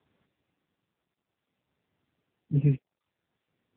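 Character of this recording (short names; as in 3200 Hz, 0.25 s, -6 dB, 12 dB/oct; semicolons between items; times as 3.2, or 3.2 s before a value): tremolo triangle 0.62 Hz, depth 70%; AMR-NB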